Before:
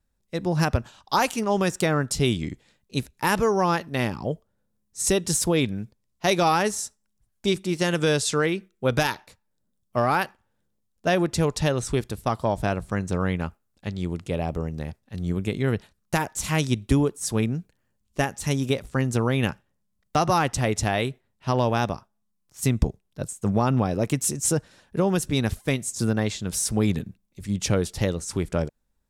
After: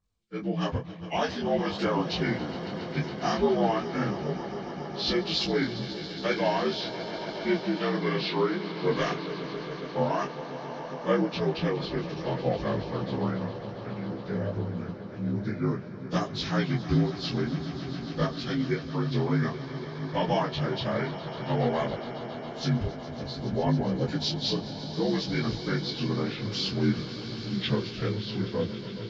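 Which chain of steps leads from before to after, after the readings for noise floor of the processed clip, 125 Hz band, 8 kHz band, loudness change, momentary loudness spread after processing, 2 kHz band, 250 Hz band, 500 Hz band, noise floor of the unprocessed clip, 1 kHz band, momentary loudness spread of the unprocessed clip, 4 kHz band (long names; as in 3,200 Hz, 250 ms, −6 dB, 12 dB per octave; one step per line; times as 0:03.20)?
−39 dBFS, −4.5 dB, −20.0 dB, −4.5 dB, 9 LU, −5.5 dB, −3.0 dB, −3.0 dB, −73 dBFS, −5.5 dB, 10 LU, −0.5 dB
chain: partials spread apart or drawn together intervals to 81%
echo that builds up and dies away 138 ms, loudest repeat 5, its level −15.5 dB
micro pitch shift up and down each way 19 cents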